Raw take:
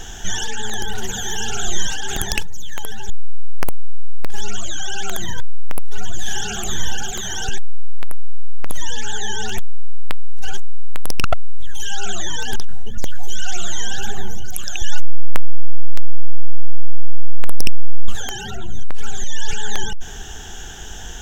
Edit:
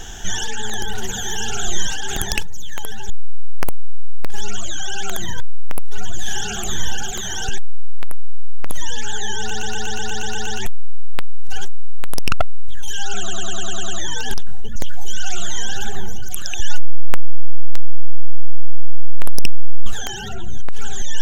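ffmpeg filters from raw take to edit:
-filter_complex "[0:a]asplit=17[a][b][c][d][e][f][g][h][i][j][k][l][m][n][o][p][q];[a]atrim=end=9.512[r];[b]atrim=start=9.388:end=9.512[s];[c]atrim=start=9.388:end=9.512[t];[d]atrim=start=9.388:end=9.512[u];[e]atrim=start=9.388:end=9.512[v];[f]atrim=start=9.388:end=9.512[w];[g]atrim=start=9.388:end=9.512[x];[h]atrim=start=9.388:end=9.512[y];[i]atrim=start=9.388:end=9.512[z];[j]atrim=start=9.388:end=12.202[aa];[k]atrim=start=12.098:end=12.202[ab];[l]atrim=start=12.098:end=12.202[ac];[m]atrim=start=12.098:end=12.202[ad];[n]atrim=start=12.098:end=12.202[ae];[o]atrim=start=12.098:end=12.202[af];[p]atrim=start=12.098:end=12.202[ag];[q]atrim=start=12.098[ah];[r][s]acrossfade=d=0.004:c1=hsin:c2=hsin[ai];[ai][t]acrossfade=d=0.004:c1=hsin:c2=hsin[aj];[aj][u]acrossfade=d=0.004:c1=hsin:c2=hsin[ak];[ak][v]acrossfade=d=0.004:c1=hsin:c2=hsin[al];[al][w]acrossfade=d=0.004:c1=hsin:c2=hsin[am];[am][x]acrossfade=d=0.004:c1=hsin:c2=hsin[an];[an][y]acrossfade=d=0.004:c1=hsin:c2=hsin[ao];[ao][z]acrossfade=d=0.004:c1=hsin:c2=hsin[ap];[ap][aa]acrossfade=d=0.004:c1=hsin:c2=hsin[aq];[aq][ab]acrossfade=d=0.004:c1=hsin:c2=hsin[ar];[ar][ac]acrossfade=d=0.004:c1=hsin:c2=hsin[as];[as][ad]acrossfade=d=0.004:c1=hsin:c2=hsin[at];[at][ae]acrossfade=d=0.004:c1=hsin:c2=hsin[au];[au][af]acrossfade=d=0.004:c1=hsin:c2=hsin[av];[av][ag]acrossfade=d=0.004:c1=hsin:c2=hsin[aw];[aw][ah]acrossfade=d=0.004:c1=hsin:c2=hsin"

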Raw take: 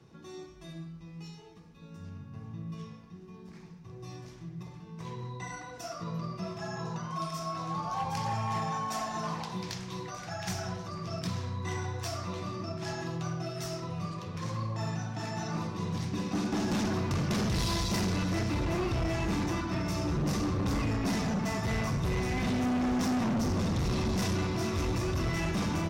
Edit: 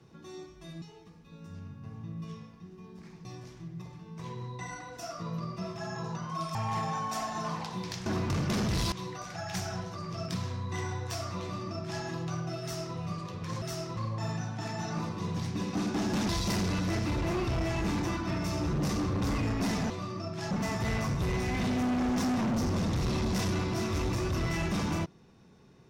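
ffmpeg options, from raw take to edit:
-filter_complex "[0:a]asplit=11[a][b][c][d][e][f][g][h][i][j][k];[a]atrim=end=0.822[l];[b]atrim=start=1.318:end=3.752[m];[c]atrim=start=4.058:end=7.362[n];[d]atrim=start=8.338:end=9.852[o];[e]atrim=start=16.868:end=17.732[p];[f]atrim=start=9.848:end=14.552[q];[g]atrim=start=13.548:end=13.902[r];[h]atrim=start=14.548:end=16.872[s];[i]atrim=start=17.728:end=21.342[t];[j]atrim=start=12.338:end=12.952[u];[k]atrim=start=21.338[v];[l][m]acrossfade=d=0.004:c1=hsin:c2=hsin[w];[w][n]acrossfade=d=0.004:c1=hsin:c2=hsin[x];[x][o]acrossfade=d=0.004:c1=hsin:c2=hsin[y];[y][p]acrossfade=d=0.004:c1=hsin:c2=hsin[z];[z][q]acrossfade=d=0.004:c1=hsin:c2=hsin[aa];[aa][r]acrossfade=d=0.004:c1=hsin:c2=hsin[ab];[ab][s]acrossfade=d=0.004:c1=hsin:c2=hsin[ac];[ac][t]acrossfade=d=0.004:c1=hsin:c2=hsin[ad];[ad][u]acrossfade=d=0.004:c1=hsin:c2=hsin[ae];[ae][v]acrossfade=d=0.004:c1=hsin:c2=hsin"

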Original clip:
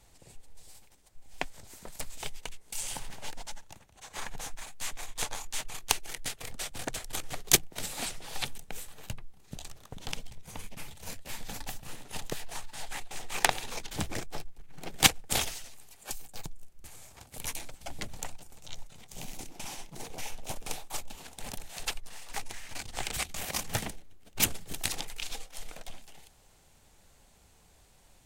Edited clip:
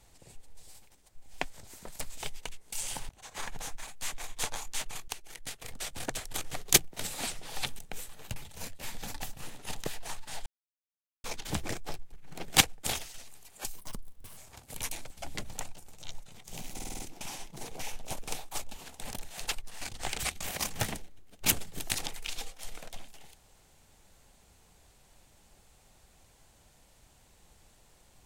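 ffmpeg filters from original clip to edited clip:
-filter_complex "[0:a]asplit=15[a][b][c][d][e][f][g][h][i][j][k][l][m][n][o];[a]atrim=end=3.092[p];[b]atrim=start=3.878:end=5.87,asetpts=PTS-STARTPTS,afade=t=out:st=1.988:d=0.004:c=hsin:silence=0.211349[q];[c]atrim=start=5.87:end=9.152,asetpts=PTS-STARTPTS,afade=t=in:d=0.88:silence=0.211349[r];[d]atrim=start=10.818:end=12.92,asetpts=PTS-STARTPTS,afade=t=out:st=2.098:d=0.004:c=hsin[s];[e]atrim=start=12.92:end=13.7,asetpts=PTS-STARTPTS,volume=0[t];[f]atrim=start=13.7:end=15.6,asetpts=PTS-STARTPTS,afade=t=in:d=0.004:c=hsin,afade=t=out:st=1.27:d=0.63:silence=0.421697[u];[g]atrim=start=15.6:end=16.244,asetpts=PTS-STARTPTS,afade=t=in:d=0.004:c=hsin:silence=0.421697[v];[h]atrim=start=16.24:end=17.01,asetpts=PTS-STARTPTS,asetrate=57330,aresample=44100[w];[i]atrim=start=17.006:end=19.432[x];[j]atrim=start=19.378:end=19.432[y];[k]atrim=start=19.378:end=19.432[z];[l]atrim=start=19.378:end=19.432[aa];[m]atrim=start=19.378:end=19.432[ab];[n]atrim=start=19.378:end=22.202[ac];[o]atrim=start=22.748[ad];[q][r]concat=n=2:v=0:a=1[ae];[p][ae]acrossfade=d=0.004:c1=hsin:c2=hsin[af];[s][t][u][v]concat=n=4:v=0:a=1[ag];[af][ag]acrossfade=d=0.004:c1=hsin:c2=hsin[ah];[ah][w]acrossfade=d=0.004:c1=hsin:c2=hsin[ai];[ai][x]acrossfade=d=0.004:c1=hsin:c2=hsin[aj];[aj][y]acrossfade=d=0.004:c1=hsin:c2=hsin[ak];[ak][z]acrossfade=d=0.004:c1=hsin:c2=hsin[al];[al][aa]acrossfade=d=0.004:c1=hsin:c2=hsin[am];[am][ab]acrossfade=d=0.004:c1=hsin:c2=hsin[an];[an][ac]acrossfade=d=0.004:c1=hsin:c2=hsin[ao];[ao][ad]acrossfade=d=0.004:c1=hsin:c2=hsin"

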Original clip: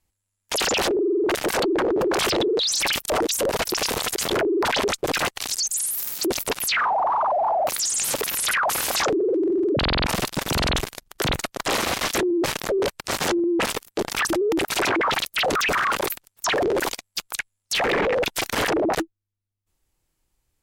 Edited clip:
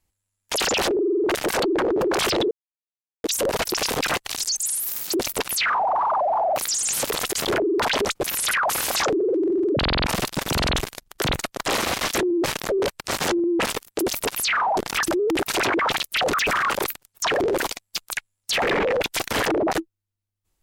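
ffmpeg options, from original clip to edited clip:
-filter_complex "[0:a]asplit=8[a][b][c][d][e][f][g][h];[a]atrim=end=2.51,asetpts=PTS-STARTPTS,afade=t=out:st=2.506:d=0.004:c=hsin[i];[b]atrim=start=2.51:end=3.24,asetpts=PTS-STARTPTS,volume=0[j];[c]atrim=start=3.24:end=3.972,asetpts=PTS-STARTPTS,afade=t=in:d=0.004:c=hsin[k];[d]atrim=start=5.078:end=8.252[l];[e]atrim=start=3.968:end=5.082[m];[f]atrim=start=8.248:end=13.992[n];[g]atrim=start=6.228:end=7.012[o];[h]atrim=start=13.988[p];[i][j][k]concat=n=3:v=0:a=1[q];[q][l]acrossfade=d=0.004:c1=hsin:c2=hsin[r];[r][m]acrossfade=d=0.004:c1=hsin:c2=hsin[s];[s][n]acrossfade=d=0.004:c1=hsin:c2=hsin[t];[t][o]acrossfade=d=0.004:c1=hsin:c2=hsin[u];[u][p]acrossfade=d=0.004:c1=hsin:c2=hsin"

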